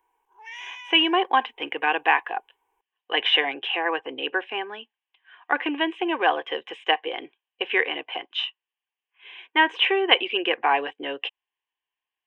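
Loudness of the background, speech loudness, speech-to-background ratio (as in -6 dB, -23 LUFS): -41.0 LUFS, -24.0 LUFS, 17.0 dB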